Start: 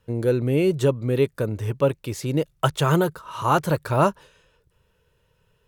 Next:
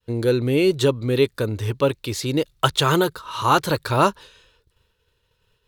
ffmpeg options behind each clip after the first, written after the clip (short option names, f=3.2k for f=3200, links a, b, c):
-af "agate=range=-33dB:threshold=-59dB:ratio=3:detection=peak,equalizer=f=160:t=o:w=0.67:g=-8,equalizer=f=630:t=o:w=0.67:g=-5,equalizer=f=4k:t=o:w=0.67:g=9,volume=4dB"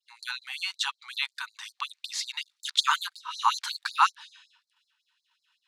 -af "lowpass=6.8k,afftfilt=real='re*gte(b*sr/1024,740*pow(4100/740,0.5+0.5*sin(2*PI*5.4*pts/sr)))':imag='im*gte(b*sr/1024,740*pow(4100/740,0.5+0.5*sin(2*PI*5.4*pts/sr)))':win_size=1024:overlap=0.75"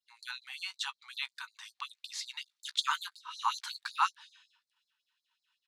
-filter_complex "[0:a]asplit=2[a][b];[b]adelay=16,volume=-14dB[c];[a][c]amix=inputs=2:normalize=0,volume=-7.5dB"